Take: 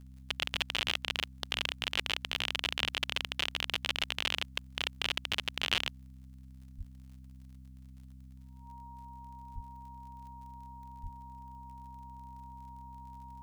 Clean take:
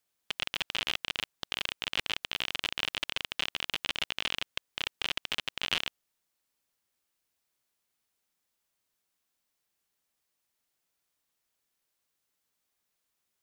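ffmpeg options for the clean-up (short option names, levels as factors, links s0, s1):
-filter_complex "[0:a]adeclick=t=4,bandreject=f=65.1:t=h:w=4,bandreject=f=130.2:t=h:w=4,bandreject=f=195.3:t=h:w=4,bandreject=f=260.4:t=h:w=4,bandreject=f=940:w=30,asplit=3[s0][s1][s2];[s0]afade=t=out:st=6.77:d=0.02[s3];[s1]highpass=f=140:w=0.5412,highpass=f=140:w=1.3066,afade=t=in:st=6.77:d=0.02,afade=t=out:st=6.89:d=0.02[s4];[s2]afade=t=in:st=6.89:d=0.02[s5];[s3][s4][s5]amix=inputs=3:normalize=0,asplit=3[s6][s7][s8];[s6]afade=t=out:st=9.54:d=0.02[s9];[s7]highpass=f=140:w=0.5412,highpass=f=140:w=1.3066,afade=t=in:st=9.54:d=0.02,afade=t=out:st=9.66:d=0.02[s10];[s8]afade=t=in:st=9.66:d=0.02[s11];[s9][s10][s11]amix=inputs=3:normalize=0,asplit=3[s12][s13][s14];[s12]afade=t=out:st=11.02:d=0.02[s15];[s13]highpass=f=140:w=0.5412,highpass=f=140:w=1.3066,afade=t=in:st=11.02:d=0.02,afade=t=out:st=11.14:d=0.02[s16];[s14]afade=t=in:st=11.14:d=0.02[s17];[s15][s16][s17]amix=inputs=3:normalize=0"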